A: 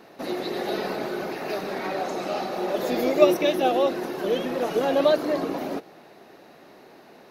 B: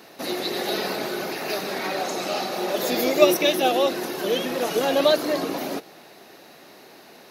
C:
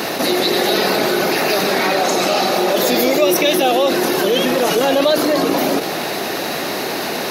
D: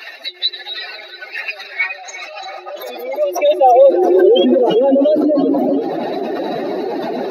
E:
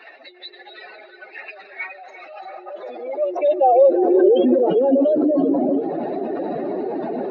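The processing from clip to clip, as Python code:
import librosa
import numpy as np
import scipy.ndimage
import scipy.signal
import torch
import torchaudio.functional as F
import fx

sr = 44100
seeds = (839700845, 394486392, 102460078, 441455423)

y1 = scipy.signal.sosfilt(scipy.signal.butter(2, 56.0, 'highpass', fs=sr, output='sos'), x)
y1 = fx.high_shelf(y1, sr, hz=2600.0, db=12.0)
y2 = fx.env_flatten(y1, sr, amount_pct=70)
y2 = F.gain(torch.from_numpy(y2), -1.0).numpy()
y3 = fx.spec_expand(y2, sr, power=2.5)
y3 = fx.filter_sweep_highpass(y3, sr, from_hz=2200.0, to_hz=94.0, start_s=2.17, end_s=5.81, q=2.3)
y3 = fx.echo_split(y3, sr, split_hz=360.0, low_ms=449, high_ms=343, feedback_pct=52, wet_db=-14.5)
y3 = F.gain(torch.from_numpy(y3), 1.0).numpy()
y4 = fx.spacing_loss(y3, sr, db_at_10k=45)
y4 = F.gain(torch.from_numpy(y4), -2.0).numpy()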